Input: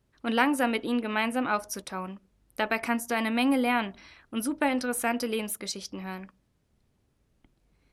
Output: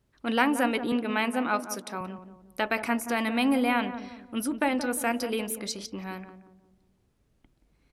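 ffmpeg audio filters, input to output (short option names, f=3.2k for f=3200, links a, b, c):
-filter_complex "[0:a]asettb=1/sr,asplit=3[a][b][c];[a]atrim=end=0.924[d];[b]atrim=start=0.92:end=2.01,asetpts=PTS-STARTPTS,afade=t=in:d=0.004:c=qsin,afade=t=out:st=1.086:d=0.004:c=qsin,highpass=f=160:w=0.5412,highpass=f=160:w=1.3066[e];[c]atrim=start=2.006[f];[d][e]acrossfade=d=0.004:c1=hsin:c2=qsin[g];[g][f]acrossfade=d=0.004:c1=qsin:c2=hsin,asplit=2[h][i];[i]adelay=177,lowpass=f=820:p=1,volume=-9dB,asplit=2[j][k];[k]adelay=177,lowpass=f=820:p=1,volume=0.46,asplit=2[l][m];[m]adelay=177,lowpass=f=820:p=1,volume=0.46,asplit=2[n][o];[o]adelay=177,lowpass=f=820:p=1,volume=0.46,asplit=2[p][q];[q]adelay=177,lowpass=f=820:p=1,volume=0.46[r];[j][l][n][p][r]amix=inputs=5:normalize=0[s];[h][s]amix=inputs=2:normalize=0"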